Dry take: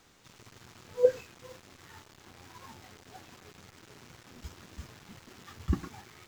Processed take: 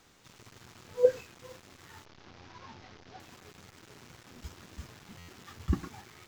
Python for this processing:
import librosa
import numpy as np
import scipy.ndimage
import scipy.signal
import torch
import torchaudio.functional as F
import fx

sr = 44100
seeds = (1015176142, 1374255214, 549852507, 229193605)

y = fx.delta_mod(x, sr, bps=32000, step_db=-53.0, at=(2.05, 3.2))
y = fx.buffer_glitch(y, sr, at_s=(5.18,), block=512, repeats=8)